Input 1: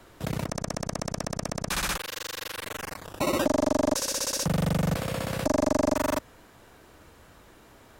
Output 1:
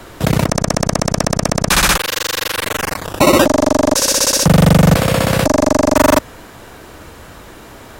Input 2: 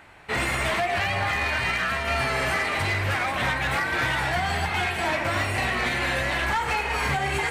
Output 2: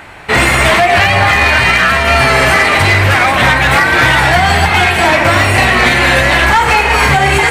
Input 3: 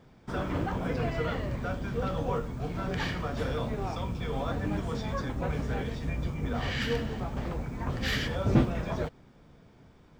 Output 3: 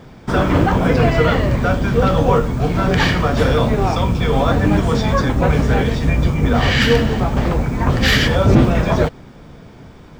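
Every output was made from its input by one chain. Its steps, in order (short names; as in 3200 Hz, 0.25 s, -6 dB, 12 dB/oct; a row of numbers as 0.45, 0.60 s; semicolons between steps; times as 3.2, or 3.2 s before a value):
maximiser +18 dB; gain -1.5 dB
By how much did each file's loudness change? +15.0, +16.0, +16.0 LU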